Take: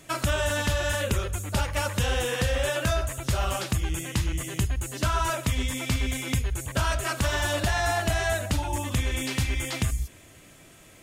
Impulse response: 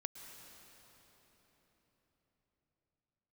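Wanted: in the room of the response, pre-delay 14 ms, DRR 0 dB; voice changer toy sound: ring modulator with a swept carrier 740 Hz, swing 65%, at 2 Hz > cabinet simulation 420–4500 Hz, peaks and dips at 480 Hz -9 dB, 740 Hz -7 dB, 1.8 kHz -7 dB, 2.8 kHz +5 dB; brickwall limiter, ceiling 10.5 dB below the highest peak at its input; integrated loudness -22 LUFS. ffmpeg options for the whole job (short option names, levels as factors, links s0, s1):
-filter_complex "[0:a]alimiter=limit=0.0631:level=0:latency=1,asplit=2[s0][s1];[1:a]atrim=start_sample=2205,adelay=14[s2];[s1][s2]afir=irnorm=-1:irlink=0,volume=1.33[s3];[s0][s3]amix=inputs=2:normalize=0,aeval=exprs='val(0)*sin(2*PI*740*n/s+740*0.65/2*sin(2*PI*2*n/s))':c=same,highpass=420,equalizer=f=480:t=q:w=4:g=-9,equalizer=f=740:t=q:w=4:g=-7,equalizer=f=1800:t=q:w=4:g=-7,equalizer=f=2800:t=q:w=4:g=5,lowpass=f=4500:w=0.5412,lowpass=f=4500:w=1.3066,volume=3.98"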